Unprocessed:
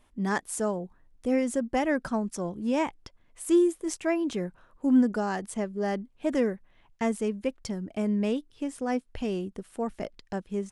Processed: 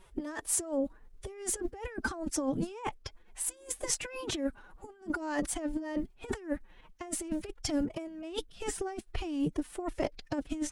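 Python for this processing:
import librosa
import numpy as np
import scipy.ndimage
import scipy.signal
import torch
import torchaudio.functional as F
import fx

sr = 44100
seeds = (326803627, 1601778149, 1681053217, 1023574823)

y = fx.over_compress(x, sr, threshold_db=-33.0, ratio=-0.5)
y = fx.pitch_keep_formants(y, sr, semitones=7.5)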